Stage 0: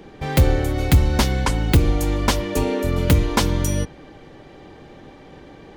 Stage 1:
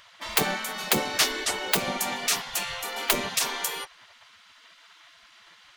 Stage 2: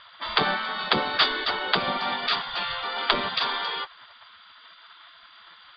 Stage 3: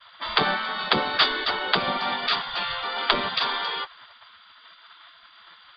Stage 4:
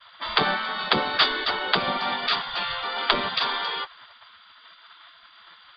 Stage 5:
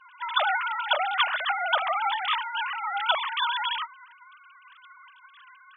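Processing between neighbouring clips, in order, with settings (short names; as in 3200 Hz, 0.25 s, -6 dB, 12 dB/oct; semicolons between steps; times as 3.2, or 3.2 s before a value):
spectral gate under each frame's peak -20 dB weak; gain +4 dB
rippled Chebyshev low-pass 4800 Hz, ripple 9 dB; gain +8 dB
expander -48 dBFS; gain +1 dB
nothing audible
sine-wave speech; gain -1.5 dB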